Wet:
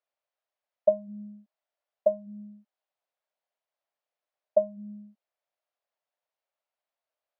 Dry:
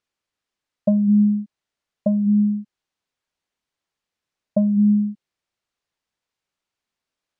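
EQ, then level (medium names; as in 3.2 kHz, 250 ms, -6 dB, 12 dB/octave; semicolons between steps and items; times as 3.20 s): resonant high-pass 620 Hz, resonance Q 4; distance through air 120 m; -8.0 dB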